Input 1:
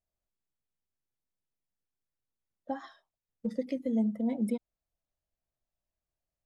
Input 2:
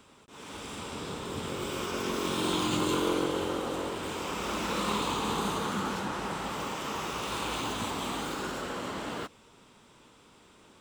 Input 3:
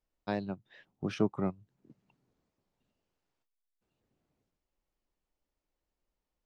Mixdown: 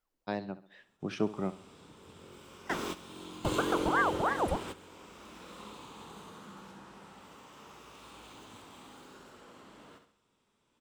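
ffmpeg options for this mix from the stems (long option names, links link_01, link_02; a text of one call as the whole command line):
ffmpeg -i stem1.wav -i stem2.wav -i stem3.wav -filter_complex "[0:a]aeval=exprs='val(0)*sin(2*PI*830*n/s+830*0.7/3*sin(2*PI*3*n/s))':channel_layout=same,volume=2.5dB,asplit=2[link_01][link_02];[1:a]adelay=650,volume=-5dB,asplit=2[link_03][link_04];[link_04]volume=-14dB[link_05];[2:a]equalizer=frequency=75:width=0.61:gain=-6.5,volume=-0.5dB,asplit=2[link_06][link_07];[link_07]volume=-15.5dB[link_08];[link_02]apad=whole_len=505268[link_09];[link_03][link_09]sidechaingate=range=-33dB:threshold=-51dB:ratio=16:detection=peak[link_10];[link_05][link_08]amix=inputs=2:normalize=0,aecho=0:1:67|134|201|268|335|402:1|0.41|0.168|0.0689|0.0283|0.0116[link_11];[link_01][link_10][link_06][link_11]amix=inputs=4:normalize=0" out.wav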